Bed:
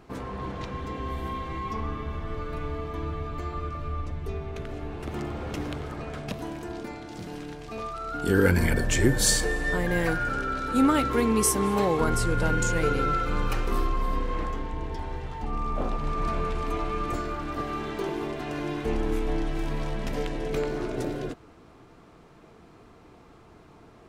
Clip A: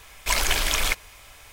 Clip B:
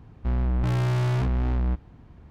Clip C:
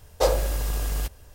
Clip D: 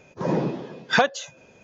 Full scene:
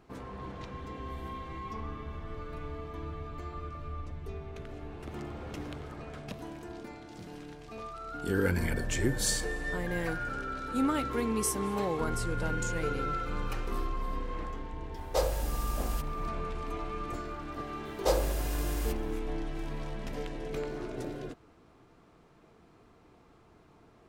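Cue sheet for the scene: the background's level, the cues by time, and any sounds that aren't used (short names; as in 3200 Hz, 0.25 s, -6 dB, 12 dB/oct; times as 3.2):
bed -7.5 dB
14.94 add C -7.5 dB
17.85 add C -6 dB
not used: A, B, D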